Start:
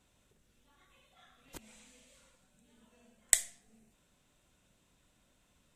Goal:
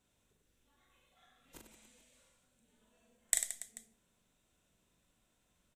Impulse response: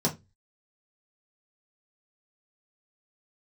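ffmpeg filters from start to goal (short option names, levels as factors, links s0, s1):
-filter_complex "[0:a]highshelf=f=12000:g=6,aecho=1:1:40|96|174.4|284.2|437.8:0.631|0.398|0.251|0.158|0.1,asplit=2[s0][s1];[1:a]atrim=start_sample=2205[s2];[s1][s2]afir=irnorm=-1:irlink=0,volume=0.0398[s3];[s0][s3]amix=inputs=2:normalize=0,volume=0.398"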